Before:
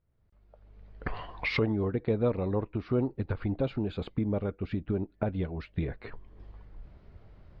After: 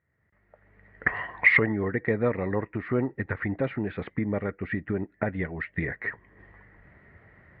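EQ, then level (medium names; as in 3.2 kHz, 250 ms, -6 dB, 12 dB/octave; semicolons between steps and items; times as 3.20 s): high-pass 98 Hz 12 dB/octave; resonant low-pass 1.9 kHz, resonance Q 13; +1.5 dB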